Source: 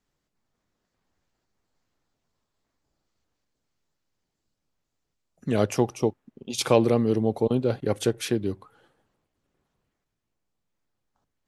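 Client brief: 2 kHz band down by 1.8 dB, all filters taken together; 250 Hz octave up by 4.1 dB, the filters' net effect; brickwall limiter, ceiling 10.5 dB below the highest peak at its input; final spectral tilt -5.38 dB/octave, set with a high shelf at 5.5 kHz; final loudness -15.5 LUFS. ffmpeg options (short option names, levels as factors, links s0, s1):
-af "equalizer=f=250:t=o:g=5,equalizer=f=2000:t=o:g=-3.5,highshelf=f=5500:g=5.5,volume=3.76,alimiter=limit=0.668:level=0:latency=1"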